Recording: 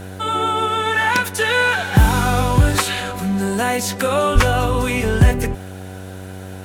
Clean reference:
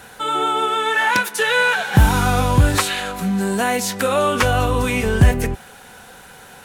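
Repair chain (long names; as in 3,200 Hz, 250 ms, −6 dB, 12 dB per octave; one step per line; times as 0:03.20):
hum removal 94.1 Hz, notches 8
0:04.34–0:04.46: high-pass filter 140 Hz 24 dB per octave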